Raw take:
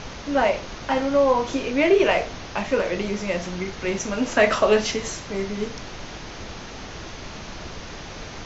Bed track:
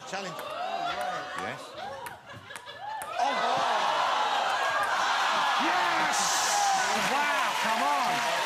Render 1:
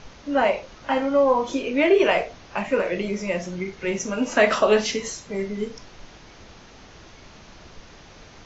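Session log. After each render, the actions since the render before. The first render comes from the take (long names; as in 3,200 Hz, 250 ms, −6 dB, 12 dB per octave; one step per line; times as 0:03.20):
noise reduction from a noise print 10 dB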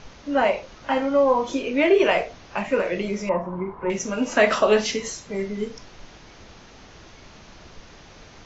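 0:03.29–0:03.90: low-pass with resonance 1,000 Hz, resonance Q 10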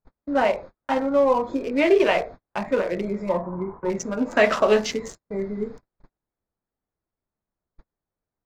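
adaptive Wiener filter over 15 samples
noise gate −37 dBFS, range −41 dB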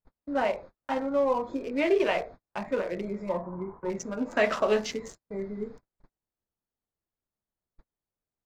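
level −6.5 dB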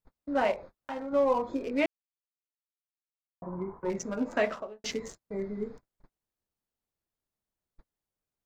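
0:00.53–0:01.13: downward compressor 2 to 1, threshold −38 dBFS
0:01.86–0:03.42: silence
0:04.21–0:04.84: fade out and dull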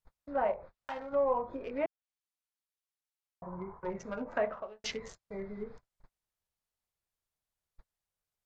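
treble cut that deepens with the level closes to 1,100 Hz, closed at −26 dBFS
parametric band 280 Hz −10.5 dB 1.3 octaves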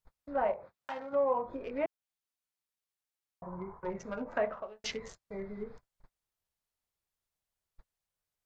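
0:00.54–0:01.46: high-pass filter 110 Hz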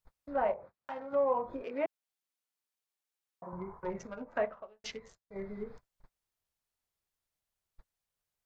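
0:00.53–0:01.10: high-shelf EQ 2,400 Hz −11 dB
0:01.62–0:03.53: high-pass filter 210 Hz
0:04.07–0:05.36: expander for the loud parts, over −46 dBFS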